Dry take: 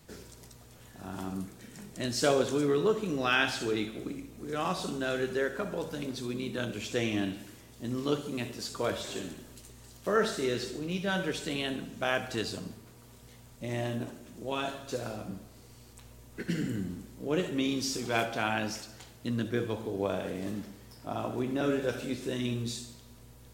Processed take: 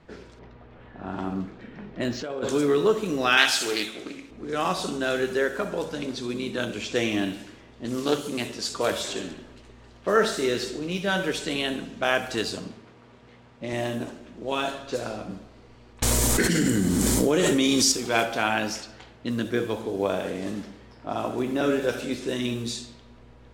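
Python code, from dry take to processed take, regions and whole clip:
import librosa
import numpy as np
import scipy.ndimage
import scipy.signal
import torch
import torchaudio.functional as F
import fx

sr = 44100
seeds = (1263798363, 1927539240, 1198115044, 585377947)

y = fx.chain(x, sr, fx.over_compress(threshold_db=-32.0, ratio=-1.0),
    fx.air_absorb(metres=200.0),
    fx.resample_linear(factor=4), at=(0.39, 2.49))
y = fx.chain(y, sr, fx.tilt_eq(slope=3.0),
    fx.doppler_dist(depth_ms=0.16), at=(3.37, 4.31))
y = fx.chain(y, sr, fx.highpass(hz=47.0, slope=12),
    fx.high_shelf(hz=6000.0, db=8.0),
    fx.doppler_dist(depth_ms=0.16), at=(7.85, 9.13))
y = fx.chain(y, sr, fx.cvsd(bps=64000),
    fx.highpass(hz=89.0, slope=12),
    fx.high_shelf(hz=9100.0, db=-6.0), at=(12.66, 13.73))
y = fx.chain(y, sr, fx.peak_eq(hz=8100.0, db=8.5, octaves=1.2),
    fx.notch(hz=2700.0, q=13.0),
    fx.env_flatten(amount_pct=100), at=(16.02, 17.92))
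y = fx.env_lowpass(y, sr, base_hz=2100.0, full_db=-28.5)
y = fx.peak_eq(y, sr, hz=110.0, db=-6.5, octaves=1.6)
y = y * librosa.db_to_amplitude(6.5)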